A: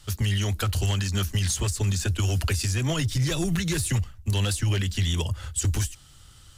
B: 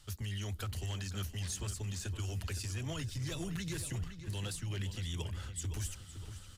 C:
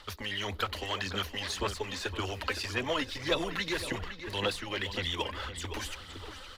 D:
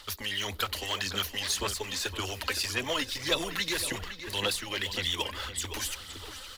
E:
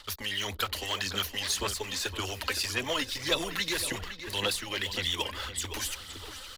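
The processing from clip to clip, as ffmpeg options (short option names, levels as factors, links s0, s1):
-filter_complex "[0:a]areverse,acompressor=threshold=0.0224:ratio=6,areverse,asplit=2[s0][s1];[s1]adelay=514,lowpass=f=4200:p=1,volume=0.316,asplit=2[s2][s3];[s3]adelay=514,lowpass=f=4200:p=1,volume=0.5,asplit=2[s4][s5];[s5]adelay=514,lowpass=f=4200:p=1,volume=0.5,asplit=2[s6][s7];[s7]adelay=514,lowpass=f=4200:p=1,volume=0.5,asplit=2[s8][s9];[s9]adelay=514,lowpass=f=4200:p=1,volume=0.5[s10];[s0][s2][s4][s6][s8][s10]amix=inputs=6:normalize=0,volume=0.631"
-af "equalizer=f=125:t=o:w=1:g=-12,equalizer=f=250:t=o:w=1:g=5,equalizer=f=500:t=o:w=1:g=11,equalizer=f=1000:t=o:w=1:g=12,equalizer=f=2000:t=o:w=1:g=9,equalizer=f=4000:t=o:w=1:g=10,equalizer=f=8000:t=o:w=1:g=-7,aphaser=in_gain=1:out_gain=1:delay=3.9:decay=0.43:speed=1.8:type=sinusoidal"
-af "crystalizer=i=3:c=0,volume=0.841"
-af "anlmdn=0.00251"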